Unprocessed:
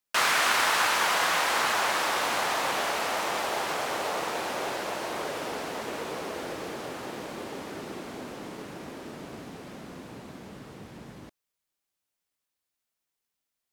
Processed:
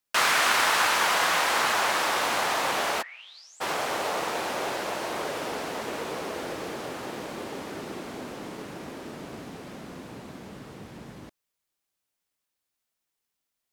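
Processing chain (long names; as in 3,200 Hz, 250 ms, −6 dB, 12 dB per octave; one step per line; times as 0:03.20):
0:03.01–0:03.60: resonant band-pass 1,700 Hz → 7,900 Hz, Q 18
level +1.5 dB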